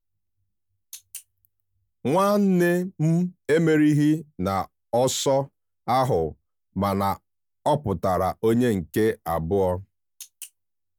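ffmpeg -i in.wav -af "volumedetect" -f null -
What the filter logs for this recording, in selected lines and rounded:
mean_volume: -24.3 dB
max_volume: -10.6 dB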